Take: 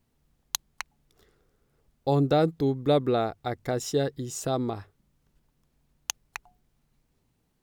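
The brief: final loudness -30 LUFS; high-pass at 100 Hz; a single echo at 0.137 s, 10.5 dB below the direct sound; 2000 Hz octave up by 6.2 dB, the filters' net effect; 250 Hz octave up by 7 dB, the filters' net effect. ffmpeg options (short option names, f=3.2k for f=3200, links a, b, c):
-af "highpass=100,equalizer=f=250:t=o:g=8.5,equalizer=f=2k:t=o:g=8,aecho=1:1:137:0.299,volume=-6dB"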